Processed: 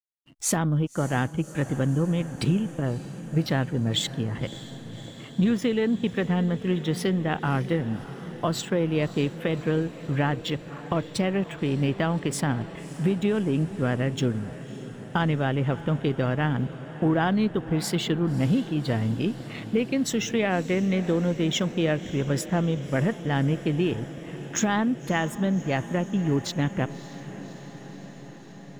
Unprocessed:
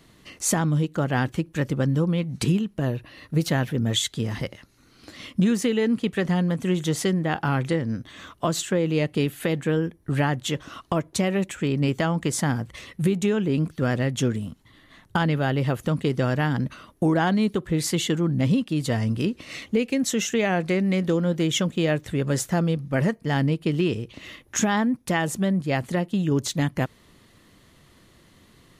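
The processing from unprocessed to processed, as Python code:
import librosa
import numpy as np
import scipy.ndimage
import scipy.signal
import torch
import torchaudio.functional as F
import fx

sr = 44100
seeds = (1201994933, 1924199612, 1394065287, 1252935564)

y = fx.block_float(x, sr, bits=7)
y = fx.backlash(y, sr, play_db=-34.5)
y = fx.noise_reduce_blind(y, sr, reduce_db=14)
y = fx.echo_diffused(y, sr, ms=587, feedback_pct=73, wet_db=-15.5)
y = y * librosa.db_to_amplitude(-1.5)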